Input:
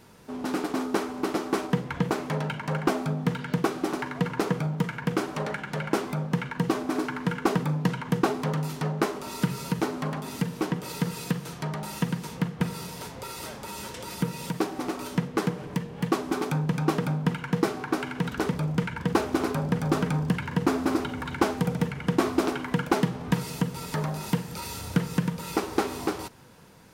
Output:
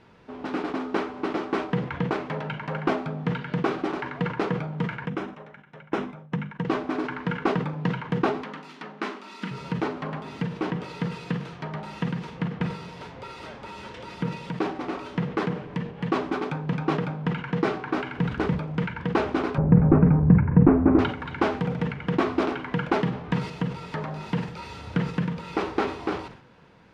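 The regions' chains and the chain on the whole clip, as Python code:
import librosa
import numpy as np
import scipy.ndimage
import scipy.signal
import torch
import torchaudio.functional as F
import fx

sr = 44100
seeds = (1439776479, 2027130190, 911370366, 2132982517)

y = fx.chain(x, sr, fx.notch(hz=4500.0, q=5.1),
    fx.upward_expand(threshold_db=-38.0, expansion=2.5), at=(5.06, 6.65))
y = fx.chain(y, sr, fx.brickwall_highpass(low_hz=180.0),
    fx.peak_eq(hz=530.0, db=-10.5, octaves=1.7), at=(8.43, 9.51))
y = fx.chain(y, sr, fx.cvsd(bps=64000),
    fx.low_shelf(hz=170.0, db=9.0),
    fx.resample_bad(factor=3, down='none', up='hold'), at=(18.15, 18.59))
y = fx.chain(y, sr, fx.lowpass(hz=2100.0, slope=12),
    fx.tilt_eq(slope=-4.5),
    fx.resample_bad(factor=8, down='none', up='filtered'), at=(19.58, 20.99))
y = scipy.signal.sosfilt(scipy.signal.cheby1(2, 1.0, 2800.0, 'lowpass', fs=sr, output='sos'), y)
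y = fx.hum_notches(y, sr, base_hz=50, count=5)
y = fx.sustainer(y, sr, db_per_s=100.0)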